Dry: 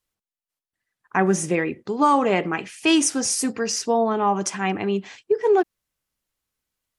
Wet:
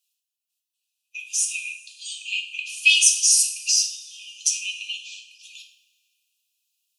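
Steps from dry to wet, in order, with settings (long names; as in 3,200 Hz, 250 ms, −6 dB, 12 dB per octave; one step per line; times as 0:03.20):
spectral magnitudes quantised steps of 15 dB
linear-phase brick-wall high-pass 2,400 Hz
coupled-rooms reverb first 0.49 s, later 2 s, from −18 dB, DRR 1.5 dB
level +6 dB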